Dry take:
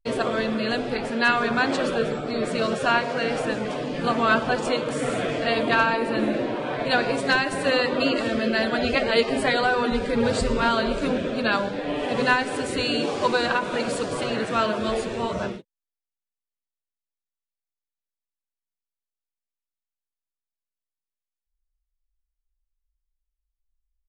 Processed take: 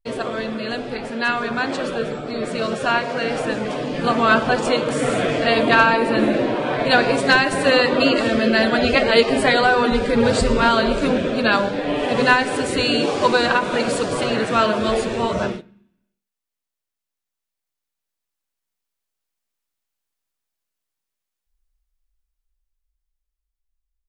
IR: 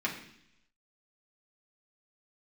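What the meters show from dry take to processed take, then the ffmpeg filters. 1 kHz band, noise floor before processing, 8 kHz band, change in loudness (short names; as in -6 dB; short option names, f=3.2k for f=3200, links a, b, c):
+5.0 dB, under -85 dBFS, +5.0 dB, +5.0 dB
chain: -filter_complex "[0:a]dynaudnorm=f=810:g=9:m=14.5dB,asplit=2[a][b];[1:a]atrim=start_sample=2205,adelay=39[c];[b][c]afir=irnorm=-1:irlink=0,volume=-25.5dB[d];[a][d]amix=inputs=2:normalize=0,volume=-1dB"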